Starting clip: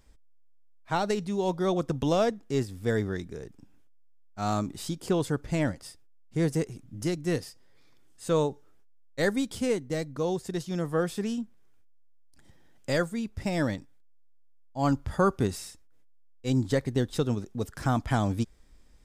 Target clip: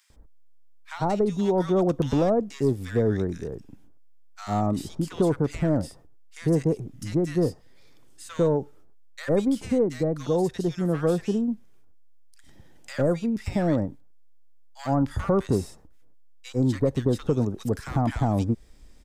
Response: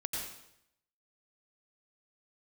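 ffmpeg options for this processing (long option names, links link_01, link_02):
-filter_complex "[0:a]acrossover=split=380|1300[link_01][link_02][link_03];[link_01]acompressor=threshold=-27dB:ratio=4[link_04];[link_02]acompressor=threshold=-28dB:ratio=4[link_05];[link_03]acompressor=threshold=-50dB:ratio=4[link_06];[link_04][link_05][link_06]amix=inputs=3:normalize=0,asplit=2[link_07][link_08];[link_08]aeval=exprs='0.0841*(abs(mod(val(0)/0.0841+3,4)-2)-1)':channel_layout=same,volume=-6.5dB[link_09];[link_07][link_09]amix=inputs=2:normalize=0,acrossover=split=1300[link_10][link_11];[link_10]adelay=100[link_12];[link_12][link_11]amix=inputs=2:normalize=0,volume=3dB"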